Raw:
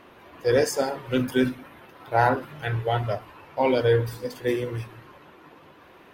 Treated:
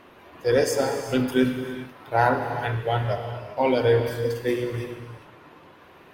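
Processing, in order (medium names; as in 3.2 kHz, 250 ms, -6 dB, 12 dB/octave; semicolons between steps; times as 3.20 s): gated-style reverb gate 440 ms flat, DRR 6 dB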